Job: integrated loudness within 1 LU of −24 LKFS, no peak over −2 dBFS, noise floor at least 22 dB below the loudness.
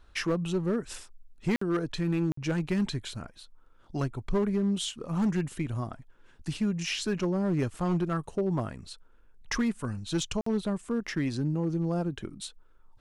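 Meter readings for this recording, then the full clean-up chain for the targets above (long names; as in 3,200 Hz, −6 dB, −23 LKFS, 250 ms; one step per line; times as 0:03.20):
share of clipped samples 1.6%; peaks flattened at −21.5 dBFS; number of dropouts 3; longest dropout 54 ms; integrated loudness −30.5 LKFS; sample peak −21.5 dBFS; target loudness −24.0 LKFS
→ clipped peaks rebuilt −21.5 dBFS
repair the gap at 0:01.56/0:02.32/0:10.41, 54 ms
level +6.5 dB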